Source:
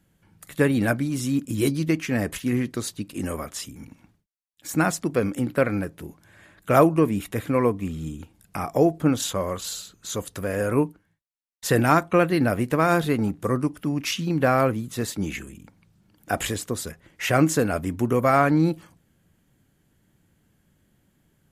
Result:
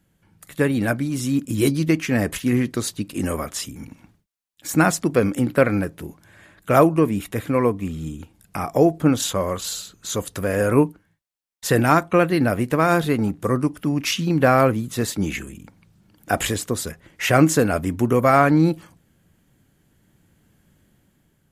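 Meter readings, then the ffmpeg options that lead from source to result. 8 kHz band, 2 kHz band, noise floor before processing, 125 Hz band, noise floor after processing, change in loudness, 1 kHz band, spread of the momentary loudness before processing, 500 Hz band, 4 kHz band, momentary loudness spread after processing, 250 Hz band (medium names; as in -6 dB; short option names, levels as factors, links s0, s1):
+4.0 dB, +3.5 dB, -68 dBFS, +3.0 dB, -65 dBFS, +3.0 dB, +3.0 dB, 14 LU, +3.0 dB, +4.0 dB, 14 LU, +3.0 dB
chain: -af "dynaudnorm=f=830:g=3:m=2"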